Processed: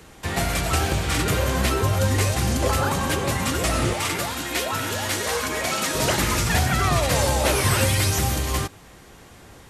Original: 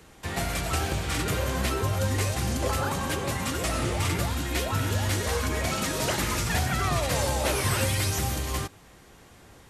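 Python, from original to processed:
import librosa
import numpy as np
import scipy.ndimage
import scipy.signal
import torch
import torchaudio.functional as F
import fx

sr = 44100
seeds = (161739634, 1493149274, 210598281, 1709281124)

y = fx.highpass(x, sr, hz=410.0, slope=6, at=(3.93, 5.95))
y = F.gain(torch.from_numpy(y), 5.5).numpy()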